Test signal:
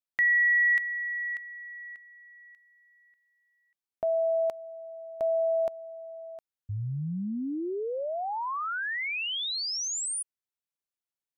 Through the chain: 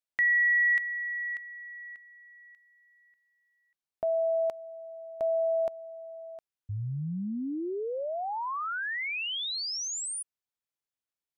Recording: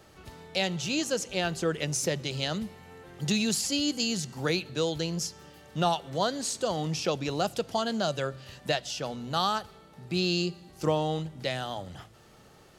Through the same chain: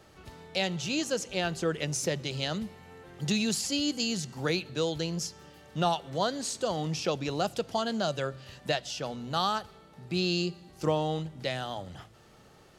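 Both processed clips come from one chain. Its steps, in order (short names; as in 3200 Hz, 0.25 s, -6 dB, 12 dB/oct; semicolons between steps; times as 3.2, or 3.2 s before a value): high shelf 9500 Hz -4.5 dB; gain -1 dB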